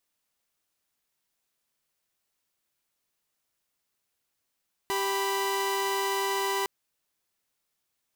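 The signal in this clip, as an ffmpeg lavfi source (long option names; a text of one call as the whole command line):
ffmpeg -f lavfi -i "aevalsrc='0.0473*((2*mod(392*t,1)-1)+(2*mod(987.77*t,1)-1))':duration=1.76:sample_rate=44100" out.wav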